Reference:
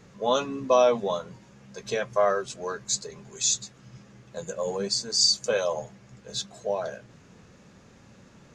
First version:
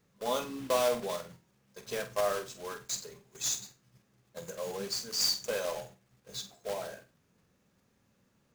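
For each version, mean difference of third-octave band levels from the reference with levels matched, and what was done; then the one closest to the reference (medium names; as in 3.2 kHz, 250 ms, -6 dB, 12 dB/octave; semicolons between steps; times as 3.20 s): 7.5 dB: block-companded coder 3-bit; gate -43 dBFS, range -10 dB; on a send: flutter echo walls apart 8.1 m, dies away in 0.28 s; on the sum: trim -8.5 dB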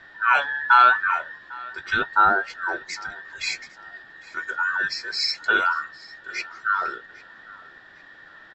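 10.0 dB: every band turned upside down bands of 2 kHz; low-pass 4.2 kHz 24 dB/octave; on a send: feedback delay 802 ms, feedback 33%, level -22.5 dB; on the sum: trim +5 dB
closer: first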